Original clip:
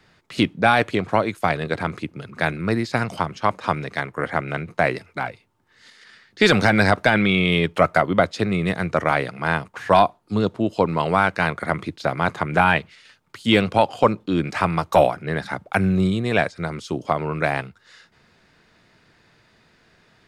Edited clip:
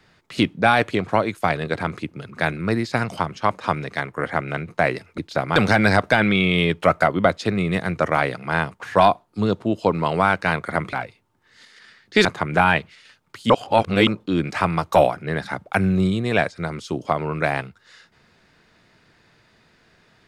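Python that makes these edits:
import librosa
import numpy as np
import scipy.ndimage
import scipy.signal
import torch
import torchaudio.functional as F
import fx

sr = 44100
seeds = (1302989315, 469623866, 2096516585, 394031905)

y = fx.edit(x, sr, fx.swap(start_s=5.18, length_s=1.32, other_s=11.87, other_length_s=0.38),
    fx.reverse_span(start_s=13.5, length_s=0.57), tone=tone)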